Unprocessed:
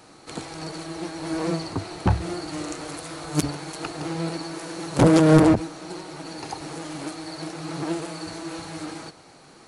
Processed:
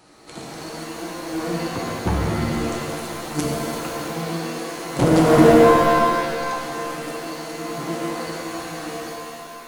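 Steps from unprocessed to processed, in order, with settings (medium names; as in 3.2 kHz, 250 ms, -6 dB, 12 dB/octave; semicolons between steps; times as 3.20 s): pitch-shifted reverb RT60 2.1 s, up +7 st, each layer -2 dB, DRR -1.5 dB; trim -3.5 dB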